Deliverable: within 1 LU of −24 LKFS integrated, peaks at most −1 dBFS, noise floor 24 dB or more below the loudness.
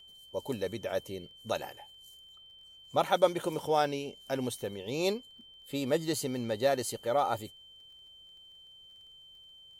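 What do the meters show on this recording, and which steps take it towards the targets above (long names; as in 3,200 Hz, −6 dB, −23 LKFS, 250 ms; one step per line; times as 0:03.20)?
crackle rate 21 per second; interfering tone 3,100 Hz; level of the tone −52 dBFS; integrated loudness −32.5 LKFS; sample peak −11.0 dBFS; target loudness −24.0 LKFS
→ click removal
notch filter 3,100 Hz, Q 30
level +8.5 dB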